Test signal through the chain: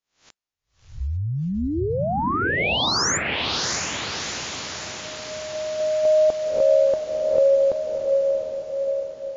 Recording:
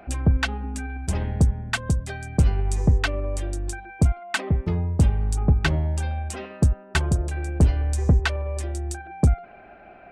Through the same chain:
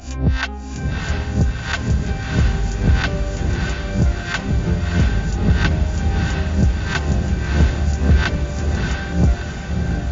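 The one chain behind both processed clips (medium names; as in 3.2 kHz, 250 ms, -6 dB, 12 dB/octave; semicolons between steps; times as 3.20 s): reverse spectral sustain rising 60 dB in 0.38 s; echo that smears into a reverb 666 ms, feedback 61%, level -3 dB; WMA 128 kbps 16 kHz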